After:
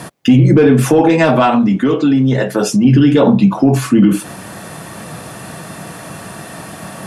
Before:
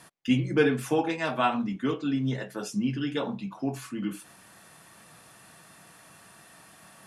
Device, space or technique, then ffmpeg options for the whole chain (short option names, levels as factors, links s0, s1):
mastering chain: -filter_complex "[0:a]highpass=54,equalizer=f=560:t=o:w=0.7:g=2.5,acompressor=threshold=0.0282:ratio=1.5,asoftclip=type=tanh:threshold=0.112,tiltshelf=f=690:g=5,alimiter=level_in=16.8:limit=0.891:release=50:level=0:latency=1,asettb=1/sr,asplit=3[s0][s1][s2];[s0]atrim=end=1.424[s3];[s1]atrim=start=1.42:end=2.85,asetpts=PTS-STARTPTS,afade=t=in:d=0.004:c=qsin,afade=t=out:st=1.426:d=0.004:c=qsin,lowshelf=f=350:g=-6[s4];[s2]atrim=start=2.846[s5];[s3][s4]acrossfade=d=0.004:c1=hsin:c2=qsin[s6];[s6][s5]acrossfade=d=0.004:c1=qsin:c2=hsin,volume=0.891"